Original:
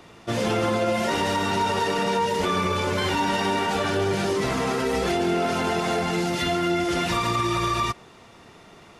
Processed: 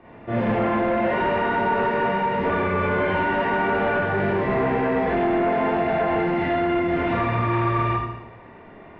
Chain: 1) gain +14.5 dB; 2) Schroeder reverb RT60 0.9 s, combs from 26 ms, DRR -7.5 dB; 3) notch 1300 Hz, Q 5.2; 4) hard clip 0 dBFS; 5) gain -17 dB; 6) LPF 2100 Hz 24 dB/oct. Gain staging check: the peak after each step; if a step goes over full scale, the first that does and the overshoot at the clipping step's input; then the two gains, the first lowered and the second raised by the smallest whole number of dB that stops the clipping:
+2.0, +11.5, +10.0, 0.0, -17.0, -15.0 dBFS; step 1, 10.0 dB; step 1 +4.5 dB, step 5 -7 dB

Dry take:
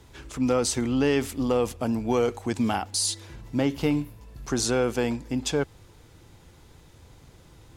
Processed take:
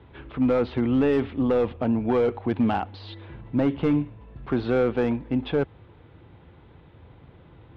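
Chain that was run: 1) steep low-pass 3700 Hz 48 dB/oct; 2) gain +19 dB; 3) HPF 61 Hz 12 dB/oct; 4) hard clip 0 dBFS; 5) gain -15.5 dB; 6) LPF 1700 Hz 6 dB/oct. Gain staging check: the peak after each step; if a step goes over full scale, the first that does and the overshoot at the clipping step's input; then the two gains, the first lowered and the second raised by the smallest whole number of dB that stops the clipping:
-11.5, +7.5, +8.0, 0.0, -15.5, -15.5 dBFS; step 2, 8.0 dB; step 2 +11 dB, step 5 -7.5 dB

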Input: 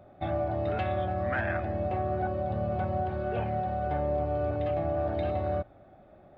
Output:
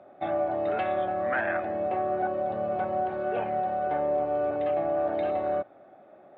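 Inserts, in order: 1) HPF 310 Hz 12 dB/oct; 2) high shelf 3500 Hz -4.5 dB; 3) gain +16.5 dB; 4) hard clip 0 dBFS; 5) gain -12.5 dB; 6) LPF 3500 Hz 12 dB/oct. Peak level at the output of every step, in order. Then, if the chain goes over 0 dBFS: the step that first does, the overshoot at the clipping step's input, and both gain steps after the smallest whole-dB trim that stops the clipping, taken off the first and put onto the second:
-19.0, -19.5, -3.0, -3.0, -15.5, -15.5 dBFS; no overload

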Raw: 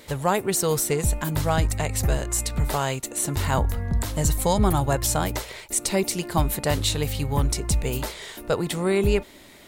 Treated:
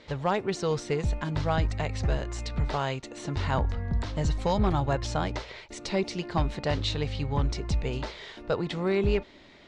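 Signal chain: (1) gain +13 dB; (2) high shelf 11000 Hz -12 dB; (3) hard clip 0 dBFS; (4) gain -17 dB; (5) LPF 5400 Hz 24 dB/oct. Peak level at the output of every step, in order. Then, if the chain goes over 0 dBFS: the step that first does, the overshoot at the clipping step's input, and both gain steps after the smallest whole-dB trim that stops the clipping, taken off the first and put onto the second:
+5.0, +5.0, 0.0, -17.0, -16.5 dBFS; step 1, 5.0 dB; step 1 +8 dB, step 4 -12 dB

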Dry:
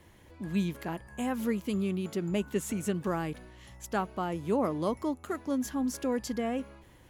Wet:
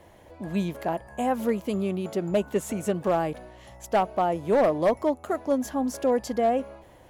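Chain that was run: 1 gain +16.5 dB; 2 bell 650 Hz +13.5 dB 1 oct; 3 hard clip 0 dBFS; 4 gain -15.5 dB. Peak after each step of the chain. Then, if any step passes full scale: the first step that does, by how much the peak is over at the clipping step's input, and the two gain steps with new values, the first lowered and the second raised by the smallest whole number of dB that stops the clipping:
-1.0, +7.5, 0.0, -15.5 dBFS; step 2, 7.5 dB; step 1 +8.5 dB, step 4 -7.5 dB

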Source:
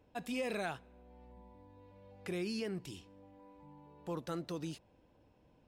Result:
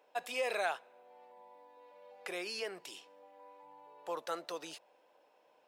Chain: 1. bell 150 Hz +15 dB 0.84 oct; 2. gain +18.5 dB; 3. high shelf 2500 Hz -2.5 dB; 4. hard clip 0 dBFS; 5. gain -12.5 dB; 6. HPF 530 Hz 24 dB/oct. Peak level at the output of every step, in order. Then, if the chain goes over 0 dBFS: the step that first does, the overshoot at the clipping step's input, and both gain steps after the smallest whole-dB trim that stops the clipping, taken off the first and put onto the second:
-22.5, -4.0, -4.0, -4.0, -16.5, -22.5 dBFS; no overload

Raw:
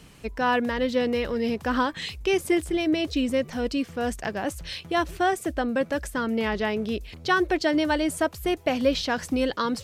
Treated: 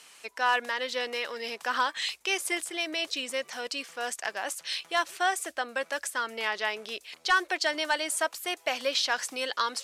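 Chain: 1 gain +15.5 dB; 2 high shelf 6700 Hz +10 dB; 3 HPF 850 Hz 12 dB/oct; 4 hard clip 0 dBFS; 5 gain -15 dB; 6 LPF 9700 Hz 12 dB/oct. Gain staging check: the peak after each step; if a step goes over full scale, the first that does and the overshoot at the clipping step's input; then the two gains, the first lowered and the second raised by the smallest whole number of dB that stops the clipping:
+5.5, +5.5, +5.5, 0.0, -15.0, -14.5 dBFS; step 1, 5.5 dB; step 1 +9.5 dB, step 5 -9 dB

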